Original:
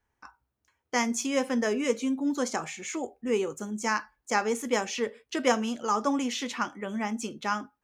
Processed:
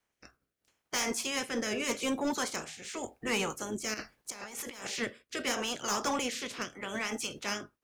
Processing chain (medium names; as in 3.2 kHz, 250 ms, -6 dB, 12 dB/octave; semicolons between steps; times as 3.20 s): spectral peaks clipped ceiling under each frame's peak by 21 dB; rotary cabinet horn 0.8 Hz; saturation -24.5 dBFS, distortion -11 dB; 3.94–4.87 s: compressor with a negative ratio -43 dBFS, ratio -1